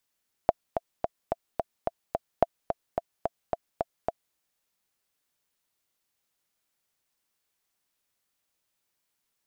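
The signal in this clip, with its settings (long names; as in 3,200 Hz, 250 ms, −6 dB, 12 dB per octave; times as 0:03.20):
click track 217 BPM, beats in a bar 7, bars 2, 675 Hz, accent 7.5 dB −5.5 dBFS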